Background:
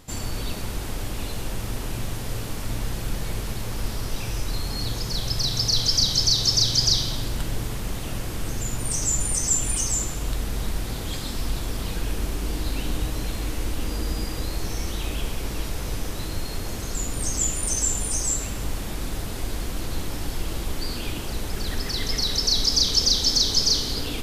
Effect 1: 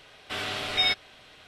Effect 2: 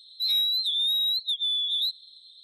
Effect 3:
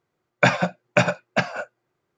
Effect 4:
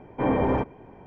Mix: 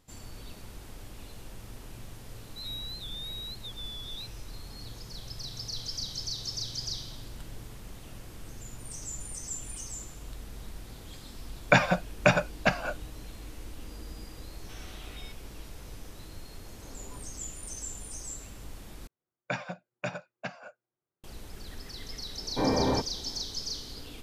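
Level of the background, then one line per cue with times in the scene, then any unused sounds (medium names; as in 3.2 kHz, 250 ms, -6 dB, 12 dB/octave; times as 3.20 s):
background -15.5 dB
2.36 s: add 2 -15.5 dB
11.29 s: add 3 -3.5 dB
14.39 s: add 1 -16.5 dB + compression, threshold -30 dBFS
16.61 s: add 4 -13.5 dB + spectral noise reduction 17 dB
19.07 s: replace with 3 -16.5 dB + tape noise reduction on one side only decoder only
22.38 s: add 4 -3.5 dB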